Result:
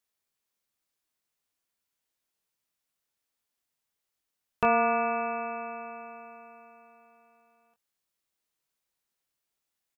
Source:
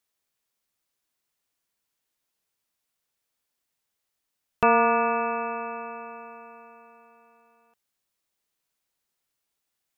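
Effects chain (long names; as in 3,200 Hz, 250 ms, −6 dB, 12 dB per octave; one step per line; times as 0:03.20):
double-tracking delay 23 ms −8 dB
level −4 dB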